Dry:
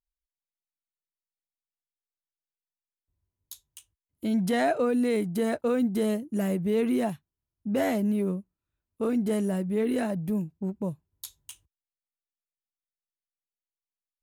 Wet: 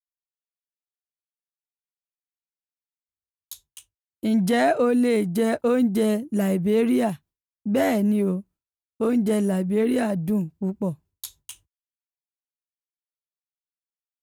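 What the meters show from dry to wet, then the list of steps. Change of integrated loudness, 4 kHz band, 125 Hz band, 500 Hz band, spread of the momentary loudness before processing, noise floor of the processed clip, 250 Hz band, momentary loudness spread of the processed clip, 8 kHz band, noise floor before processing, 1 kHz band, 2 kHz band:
+5.0 dB, +5.0 dB, +5.0 dB, +5.0 dB, 17 LU, under -85 dBFS, +5.0 dB, 15 LU, +5.0 dB, under -85 dBFS, +5.0 dB, +5.0 dB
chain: expander -51 dBFS; trim +5 dB

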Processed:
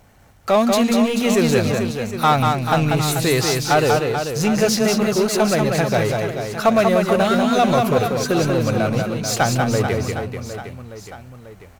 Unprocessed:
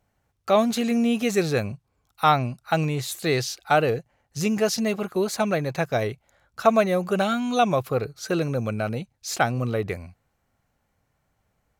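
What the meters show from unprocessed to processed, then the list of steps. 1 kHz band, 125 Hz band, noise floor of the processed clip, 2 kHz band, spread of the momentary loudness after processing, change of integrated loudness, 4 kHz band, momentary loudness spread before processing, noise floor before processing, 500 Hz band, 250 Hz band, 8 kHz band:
+5.5 dB, +7.5 dB, -45 dBFS, +6.0 dB, 9 LU, +6.0 dB, +8.0 dB, 11 LU, -73 dBFS, +6.0 dB, +6.5 dB, +9.0 dB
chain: power-law waveshaper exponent 0.7; on a send: reverse bouncing-ball echo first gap 190 ms, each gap 1.3×, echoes 5

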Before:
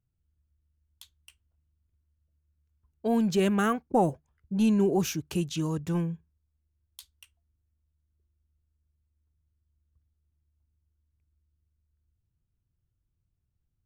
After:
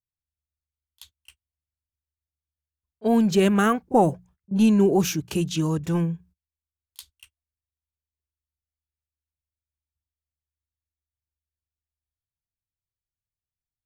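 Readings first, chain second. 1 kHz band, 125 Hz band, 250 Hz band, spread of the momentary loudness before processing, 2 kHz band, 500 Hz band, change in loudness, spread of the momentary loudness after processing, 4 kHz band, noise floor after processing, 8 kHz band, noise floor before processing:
+5.5 dB, +5.0 dB, +5.5 dB, 10 LU, +5.5 dB, +5.5 dB, +5.5 dB, 11 LU, +5.5 dB, under -85 dBFS, +5.5 dB, -79 dBFS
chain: hum notches 60/120/180 Hz; gate -56 dBFS, range -25 dB; pre-echo 31 ms -21.5 dB; trim +5.5 dB

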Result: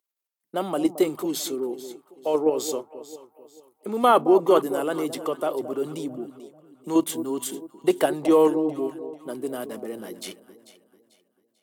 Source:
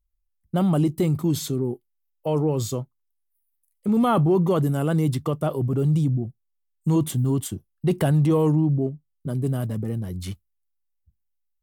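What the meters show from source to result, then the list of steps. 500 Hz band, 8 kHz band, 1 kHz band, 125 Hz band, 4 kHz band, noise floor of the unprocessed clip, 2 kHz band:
+3.5 dB, +2.0 dB, +4.5 dB, -22.5 dB, +3.0 dB, -74 dBFS, +3.0 dB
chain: high-pass 320 Hz 24 dB/octave; in parallel at +1 dB: level held to a coarse grid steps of 23 dB; on the sum: echo whose repeats swap between lows and highs 221 ms, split 860 Hz, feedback 58%, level -11 dB

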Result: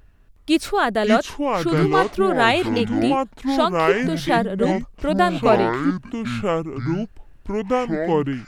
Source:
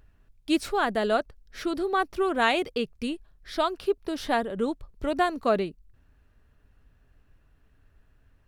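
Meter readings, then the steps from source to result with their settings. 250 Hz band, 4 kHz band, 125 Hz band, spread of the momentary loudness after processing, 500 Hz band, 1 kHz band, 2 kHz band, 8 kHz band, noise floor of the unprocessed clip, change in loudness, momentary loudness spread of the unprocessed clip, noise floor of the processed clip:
+10.5 dB, +7.0 dB, +20.5 dB, 8 LU, +8.5 dB, +8.0 dB, +7.5 dB, +8.0 dB, -63 dBFS, +7.0 dB, 10 LU, -49 dBFS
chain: ever faster or slower copies 364 ms, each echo -6 st, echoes 2; trim +6 dB

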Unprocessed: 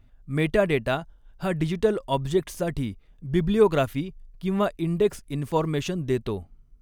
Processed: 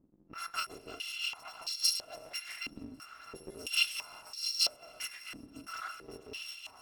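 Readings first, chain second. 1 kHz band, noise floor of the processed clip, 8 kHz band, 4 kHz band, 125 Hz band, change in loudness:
-13.5 dB, -58 dBFS, +4.5 dB, +6.0 dB, -33.0 dB, -9.0 dB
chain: bit-reversed sample order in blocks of 256 samples; level-controlled noise filter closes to 1.5 kHz, open at -17.5 dBFS; saturation -14.5 dBFS, distortion -16 dB; on a send: shuffle delay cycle 1094 ms, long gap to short 1.5:1, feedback 48%, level -12 dB; on the sum: gated-style reverb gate 410 ms rising, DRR 8.5 dB; careless resampling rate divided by 2×, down none, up zero stuff; step-sequenced band-pass 3 Hz 270–4500 Hz; trim +6 dB

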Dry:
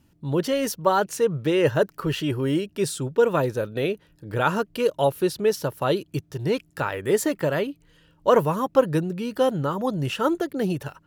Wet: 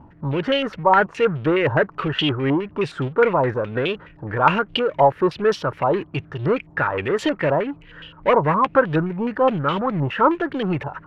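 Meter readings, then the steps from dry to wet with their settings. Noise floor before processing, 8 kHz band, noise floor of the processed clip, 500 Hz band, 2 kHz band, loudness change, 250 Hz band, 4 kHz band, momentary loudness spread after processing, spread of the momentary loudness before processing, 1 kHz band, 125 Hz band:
-61 dBFS, under -10 dB, -47 dBFS, +2.0 dB, +7.5 dB, +3.5 dB, +2.5 dB, +5.5 dB, 8 LU, 7 LU, +7.0 dB, +3.0 dB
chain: power-law waveshaper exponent 0.7; tremolo 4 Hz, depth 38%; step-sequenced low-pass 9.6 Hz 920–3100 Hz; trim -1 dB

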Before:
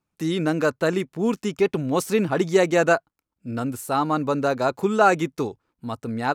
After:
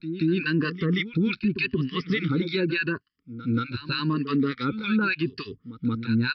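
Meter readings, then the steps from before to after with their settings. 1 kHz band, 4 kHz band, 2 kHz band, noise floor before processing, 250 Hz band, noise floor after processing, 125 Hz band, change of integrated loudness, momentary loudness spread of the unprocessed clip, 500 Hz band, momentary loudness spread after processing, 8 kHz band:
-11.5 dB, +3.0 dB, -0.5 dB, -84 dBFS, +0.5 dB, -70 dBFS, +2.5 dB, -3.5 dB, 12 LU, -10.5 dB, 7 LU, under -30 dB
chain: drifting ripple filter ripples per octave 1.4, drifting +0.84 Hz, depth 16 dB; harmonic tremolo 3.4 Hz, depth 100%, crossover 1.2 kHz; in parallel at +1.5 dB: compression, threshold -29 dBFS, peak gain reduction 16.5 dB; on the sum: Butterworth band-stop 710 Hz, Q 0.57; on a send: reverse echo 180 ms -14 dB; on the sum: resampled via 11.025 kHz; peak limiter -19.5 dBFS, peak gain reduction 8.5 dB; trim +3.5 dB

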